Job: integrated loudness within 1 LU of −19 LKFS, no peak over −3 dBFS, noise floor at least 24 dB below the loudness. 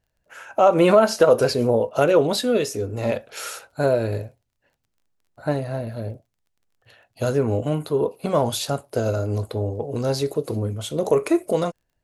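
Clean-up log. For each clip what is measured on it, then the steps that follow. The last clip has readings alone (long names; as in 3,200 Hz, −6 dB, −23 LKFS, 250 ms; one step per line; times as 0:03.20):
crackle rate 23 per second; integrated loudness −22.0 LKFS; sample peak −3.0 dBFS; target loudness −19.0 LKFS
→ click removal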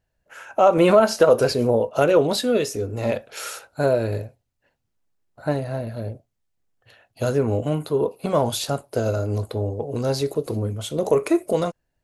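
crackle rate 0 per second; integrated loudness −22.0 LKFS; sample peak −3.5 dBFS; target loudness −19.0 LKFS
→ level +3 dB
brickwall limiter −3 dBFS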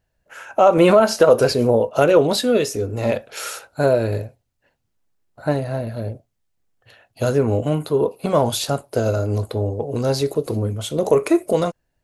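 integrated loudness −19.5 LKFS; sample peak −3.0 dBFS; background noise floor −72 dBFS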